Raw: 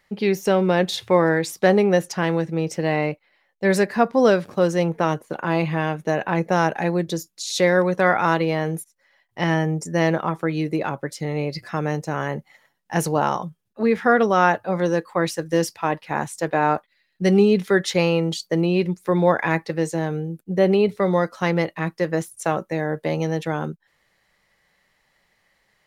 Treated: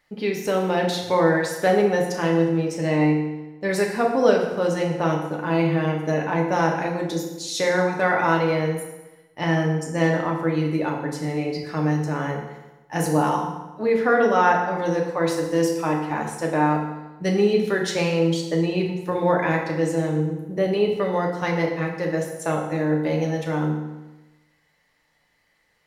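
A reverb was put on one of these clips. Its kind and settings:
feedback delay network reverb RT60 1.1 s, low-frequency decay 1×, high-frequency decay 0.8×, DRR −0.5 dB
level −4.5 dB

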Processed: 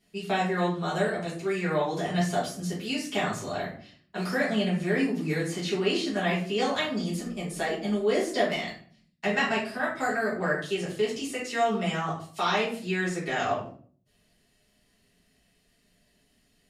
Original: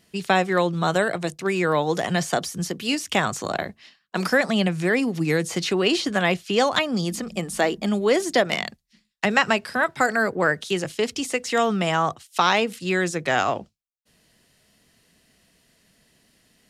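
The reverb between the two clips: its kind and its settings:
rectangular room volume 45 cubic metres, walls mixed, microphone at 1.7 metres
level −15.5 dB

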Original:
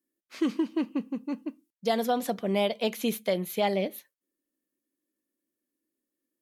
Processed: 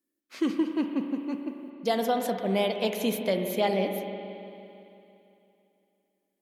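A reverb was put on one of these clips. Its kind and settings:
spring reverb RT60 2.9 s, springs 42/56 ms, chirp 80 ms, DRR 5 dB

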